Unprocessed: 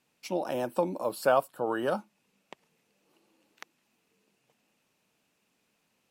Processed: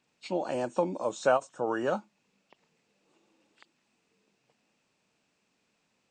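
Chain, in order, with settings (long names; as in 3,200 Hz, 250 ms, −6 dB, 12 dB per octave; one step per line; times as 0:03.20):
hearing-aid frequency compression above 2,700 Hz 1.5 to 1
every ending faded ahead of time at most 440 dB per second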